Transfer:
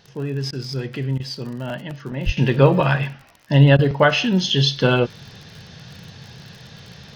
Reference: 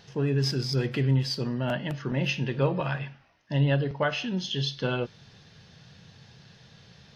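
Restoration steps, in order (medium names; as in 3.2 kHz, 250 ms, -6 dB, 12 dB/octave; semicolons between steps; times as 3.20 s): de-click; 2.25–2.37 s: high-pass 140 Hz 24 dB/octave; interpolate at 0.51/1.18/3.77 s, 17 ms; 2.37 s: gain correction -11.5 dB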